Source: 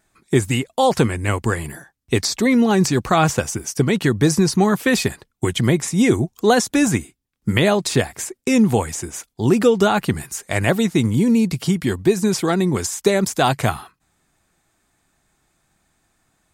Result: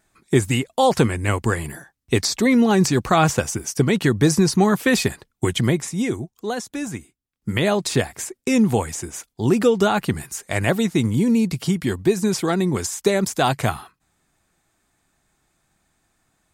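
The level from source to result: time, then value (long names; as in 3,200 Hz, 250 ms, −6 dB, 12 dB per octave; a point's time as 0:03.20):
0:05.57 −0.5 dB
0:06.33 −11.5 dB
0:06.98 −11.5 dB
0:07.78 −2 dB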